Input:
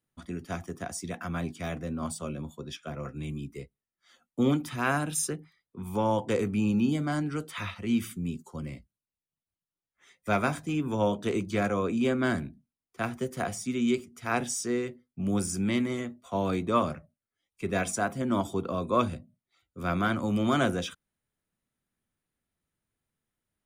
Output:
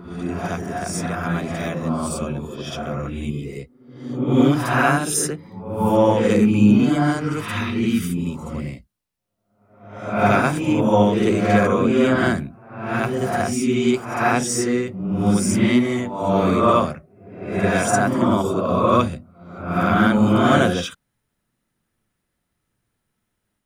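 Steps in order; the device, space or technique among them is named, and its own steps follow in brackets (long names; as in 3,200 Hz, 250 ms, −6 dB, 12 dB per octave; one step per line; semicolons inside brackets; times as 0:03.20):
reverse reverb (reversed playback; convolution reverb RT60 0.80 s, pre-delay 44 ms, DRR −2 dB; reversed playback)
level +6.5 dB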